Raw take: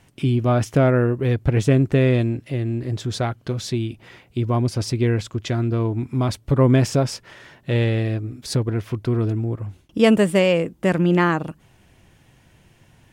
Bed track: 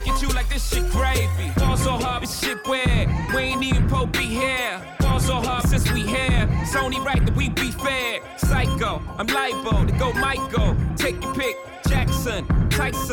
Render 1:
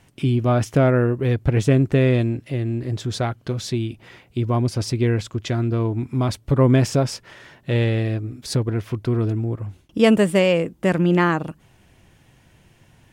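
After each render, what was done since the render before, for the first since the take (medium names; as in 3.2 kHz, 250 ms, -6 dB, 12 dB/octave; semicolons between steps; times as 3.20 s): no audible change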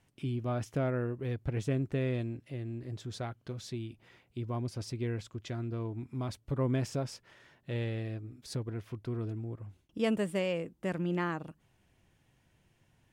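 trim -15 dB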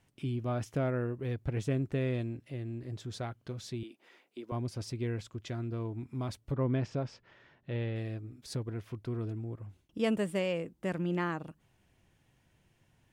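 3.83–4.52 s: high-pass 270 Hz 24 dB/octave; 6.52–7.96 s: distance through air 160 m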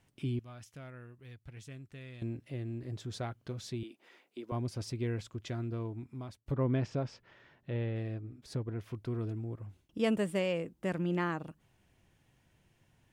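0.39–2.22 s: amplifier tone stack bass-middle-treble 5-5-5; 5.48–6.46 s: fade out equal-power, to -18.5 dB; 7.70–8.81 s: treble shelf 3.2 kHz -8.5 dB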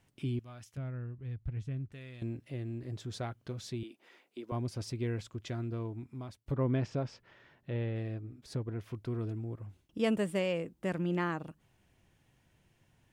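0.77–1.92 s: RIAA curve playback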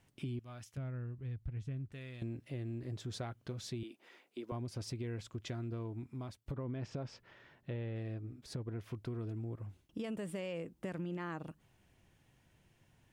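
peak limiter -27.5 dBFS, peak gain reduction 8.5 dB; compression, threshold -37 dBFS, peak gain reduction 7 dB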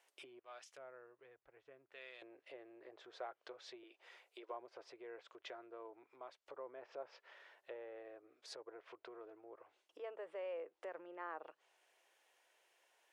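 low-pass that closes with the level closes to 1.5 kHz, closed at -38 dBFS; inverse Chebyshev high-pass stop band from 230 Hz, stop band 40 dB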